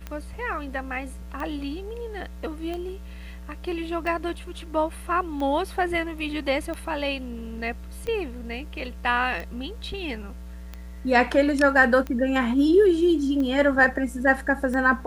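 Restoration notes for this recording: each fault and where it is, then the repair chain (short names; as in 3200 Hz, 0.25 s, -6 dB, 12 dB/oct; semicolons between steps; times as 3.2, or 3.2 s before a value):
tick 45 rpm -20 dBFS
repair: de-click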